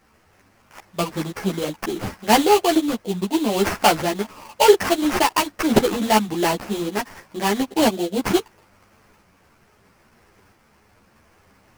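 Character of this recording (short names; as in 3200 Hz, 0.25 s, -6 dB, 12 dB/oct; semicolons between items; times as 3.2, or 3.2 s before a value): a quantiser's noise floor 10-bit, dither triangular; tremolo saw up 0.76 Hz, depth 30%; aliases and images of a low sample rate 3700 Hz, jitter 20%; a shimmering, thickened sound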